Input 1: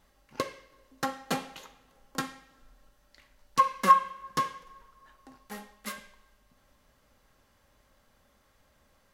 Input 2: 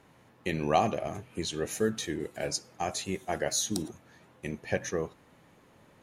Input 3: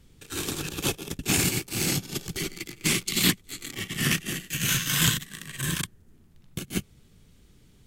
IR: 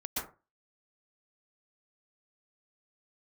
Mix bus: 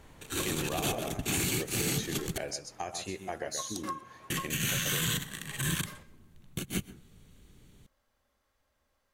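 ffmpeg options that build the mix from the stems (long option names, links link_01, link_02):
-filter_complex "[0:a]volume=-10dB[link_01];[1:a]volume=2.5dB,asplit=2[link_02][link_03];[link_03]volume=-16dB[link_04];[2:a]bandreject=frequency=5100:width=5.7,volume=-1dB,asplit=3[link_05][link_06][link_07];[link_05]atrim=end=2.38,asetpts=PTS-STARTPTS,afade=type=out:start_time=2.376:duration=0.004:curve=hsin[link_08];[link_06]atrim=start=2.38:end=4.3,asetpts=PTS-STARTPTS,volume=0[link_09];[link_07]atrim=start=4.3,asetpts=PTS-STARTPTS,afade=type=in:duration=0.004:curve=hsin[link_10];[link_08][link_09][link_10]concat=n=3:v=0:a=1,asplit=2[link_11][link_12];[link_12]volume=-23dB[link_13];[link_01][link_02]amix=inputs=2:normalize=0,equalizer=frequency=170:width_type=o:width=0.77:gain=-7,acompressor=threshold=-34dB:ratio=6,volume=0dB[link_14];[3:a]atrim=start_sample=2205[link_15];[link_13][link_15]afir=irnorm=-1:irlink=0[link_16];[link_04]aecho=0:1:128:1[link_17];[link_11][link_14][link_16][link_17]amix=inputs=4:normalize=0,alimiter=limit=-20.5dB:level=0:latency=1:release=18"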